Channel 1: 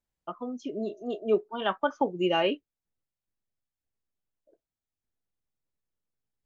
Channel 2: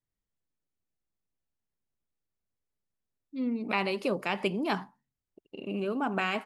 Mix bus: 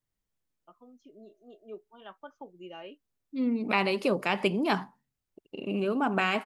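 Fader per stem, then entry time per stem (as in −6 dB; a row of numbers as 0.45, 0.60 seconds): −19.0, +3.0 decibels; 0.40, 0.00 seconds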